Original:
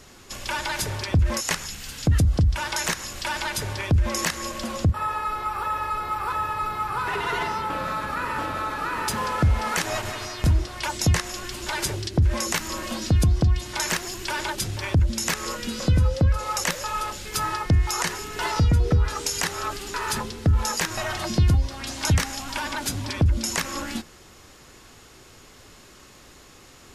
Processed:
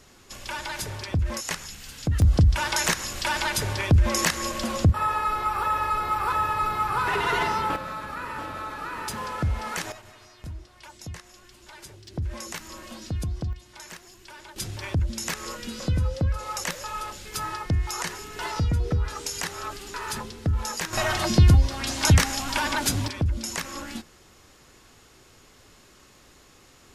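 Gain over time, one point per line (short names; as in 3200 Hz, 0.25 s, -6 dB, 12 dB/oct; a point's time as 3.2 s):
-5 dB
from 2.22 s +2 dB
from 7.76 s -6 dB
from 9.92 s -18 dB
from 12.08 s -10.5 dB
from 13.53 s -17 dB
from 14.56 s -5 dB
from 20.93 s +3.5 dB
from 23.08 s -5 dB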